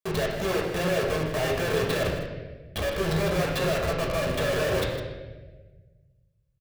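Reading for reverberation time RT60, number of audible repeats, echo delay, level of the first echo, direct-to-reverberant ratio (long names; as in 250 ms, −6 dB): 1.3 s, 1, 157 ms, −10.0 dB, −3.0 dB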